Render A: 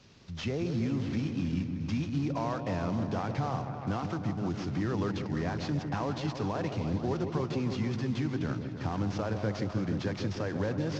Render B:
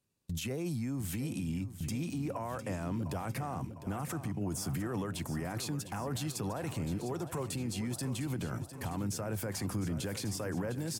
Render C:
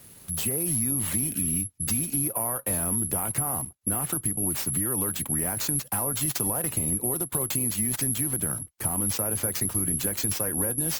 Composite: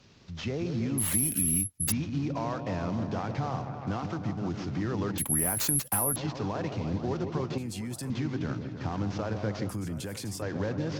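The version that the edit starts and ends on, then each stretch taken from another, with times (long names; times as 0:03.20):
A
0:00.98–0:01.92: punch in from C
0:05.18–0:06.16: punch in from C
0:07.58–0:08.10: punch in from B
0:09.69–0:10.42: punch in from B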